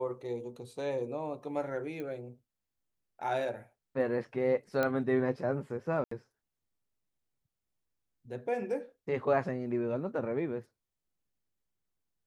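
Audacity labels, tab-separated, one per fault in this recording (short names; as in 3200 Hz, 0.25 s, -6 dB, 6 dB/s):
2.000000	2.000000	pop -29 dBFS
4.830000	4.830000	pop -17 dBFS
6.040000	6.110000	gap 74 ms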